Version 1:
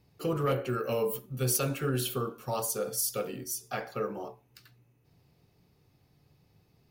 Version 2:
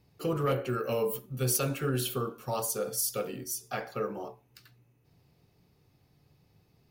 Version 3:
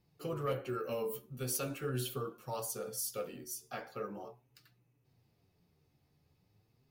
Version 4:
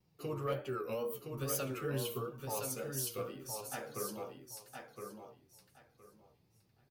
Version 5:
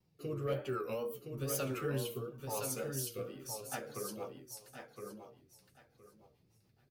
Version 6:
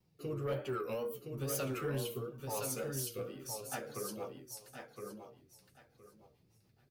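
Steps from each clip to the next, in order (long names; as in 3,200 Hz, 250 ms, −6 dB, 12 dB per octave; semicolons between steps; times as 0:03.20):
no processing that can be heard
flanger 0.42 Hz, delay 5.5 ms, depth 8.5 ms, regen +40%; level −3.5 dB
tape wow and flutter 120 cents; on a send: repeating echo 1,016 ms, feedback 20%, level −5.5 dB; on the sum: level −1 dB
rotating-speaker cabinet horn 1 Hz, later 7 Hz, at 0:03.16; level +2 dB
soft clipping −29 dBFS, distortion −20 dB; level +1 dB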